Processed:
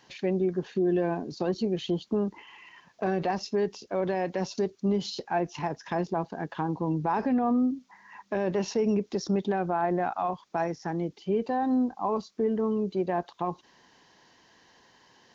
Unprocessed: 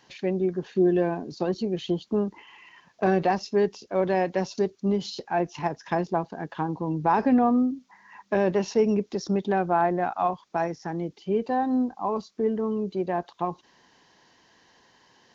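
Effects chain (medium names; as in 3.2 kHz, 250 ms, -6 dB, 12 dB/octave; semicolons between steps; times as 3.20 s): peak limiter -18.5 dBFS, peak gain reduction 6 dB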